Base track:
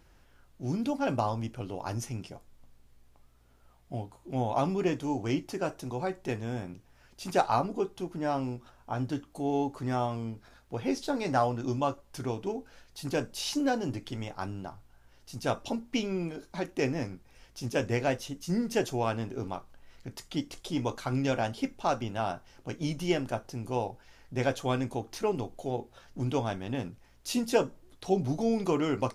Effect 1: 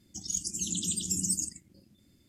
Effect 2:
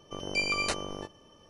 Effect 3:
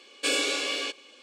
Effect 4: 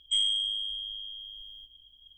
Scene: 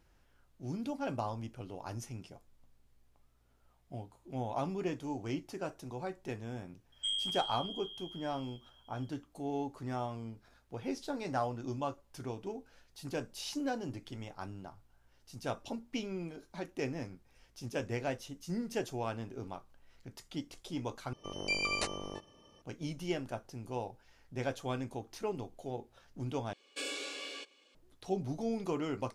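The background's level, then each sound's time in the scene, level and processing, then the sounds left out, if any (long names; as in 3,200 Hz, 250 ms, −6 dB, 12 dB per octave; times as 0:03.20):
base track −7.5 dB
0:06.92: mix in 4 −8.5 dB
0:21.13: overwrite with 2 −4 dB + notch filter 1,500 Hz, Q 6.5
0:26.53: overwrite with 3 −13.5 dB
not used: 1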